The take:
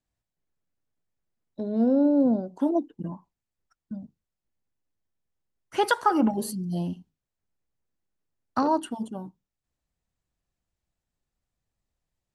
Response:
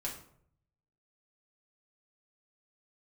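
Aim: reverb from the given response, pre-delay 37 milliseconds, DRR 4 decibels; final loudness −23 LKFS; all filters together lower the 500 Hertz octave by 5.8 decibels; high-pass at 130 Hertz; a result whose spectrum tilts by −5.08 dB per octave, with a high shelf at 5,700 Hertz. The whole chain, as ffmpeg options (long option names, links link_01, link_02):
-filter_complex "[0:a]highpass=130,equalizer=frequency=500:width_type=o:gain=-7.5,highshelf=frequency=5700:gain=8,asplit=2[link_01][link_02];[1:a]atrim=start_sample=2205,adelay=37[link_03];[link_02][link_03]afir=irnorm=-1:irlink=0,volume=-5dB[link_04];[link_01][link_04]amix=inputs=2:normalize=0,volume=2.5dB"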